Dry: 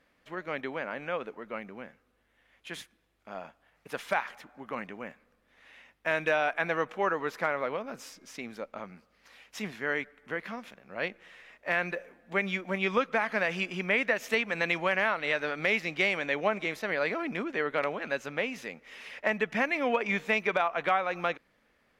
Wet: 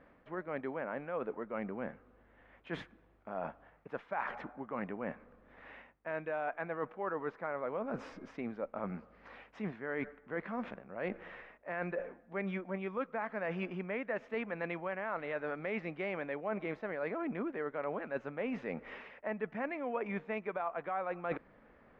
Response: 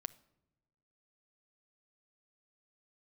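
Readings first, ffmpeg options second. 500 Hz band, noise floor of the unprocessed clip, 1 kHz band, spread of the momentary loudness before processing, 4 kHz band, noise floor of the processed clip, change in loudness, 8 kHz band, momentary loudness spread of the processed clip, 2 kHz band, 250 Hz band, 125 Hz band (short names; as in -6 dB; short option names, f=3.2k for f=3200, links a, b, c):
-6.0 dB, -71 dBFS, -8.0 dB, 16 LU, -19.0 dB, -64 dBFS, -9.0 dB, under -25 dB, 9 LU, -12.5 dB, -3.0 dB, -3.0 dB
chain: -af "lowpass=1.3k,areverse,acompressor=threshold=-45dB:ratio=6,areverse,volume=9.5dB"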